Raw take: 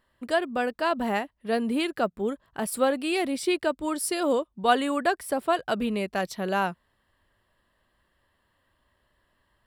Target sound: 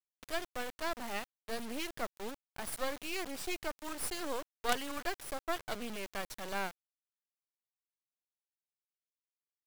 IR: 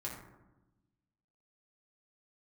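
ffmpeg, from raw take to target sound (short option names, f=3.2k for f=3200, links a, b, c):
-af "tiltshelf=f=970:g=-4,acrusher=bits=3:dc=4:mix=0:aa=0.000001,volume=-8dB"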